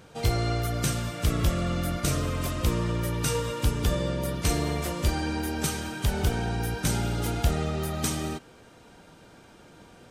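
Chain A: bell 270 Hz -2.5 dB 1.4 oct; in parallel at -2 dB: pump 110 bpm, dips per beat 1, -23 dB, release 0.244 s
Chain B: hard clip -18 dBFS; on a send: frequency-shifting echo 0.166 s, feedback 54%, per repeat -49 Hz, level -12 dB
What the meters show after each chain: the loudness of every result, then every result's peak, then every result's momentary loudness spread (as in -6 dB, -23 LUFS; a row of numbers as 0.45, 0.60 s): -24.5, -28.0 LUFS; -8.5, -15.0 dBFS; 3, 3 LU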